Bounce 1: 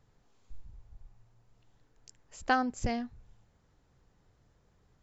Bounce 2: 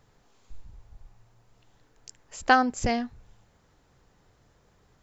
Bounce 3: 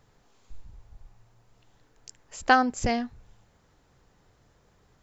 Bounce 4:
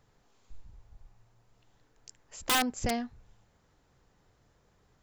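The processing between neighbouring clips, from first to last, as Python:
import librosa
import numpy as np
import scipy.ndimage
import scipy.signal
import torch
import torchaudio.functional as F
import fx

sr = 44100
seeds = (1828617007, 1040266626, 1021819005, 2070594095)

y1 = fx.low_shelf(x, sr, hz=250.0, db=-6.0)
y1 = y1 * 10.0 ** (8.5 / 20.0)
y2 = y1
y3 = (np.mod(10.0 ** (14.5 / 20.0) * y2 + 1.0, 2.0) - 1.0) / 10.0 ** (14.5 / 20.0)
y3 = y3 * 10.0 ** (-4.5 / 20.0)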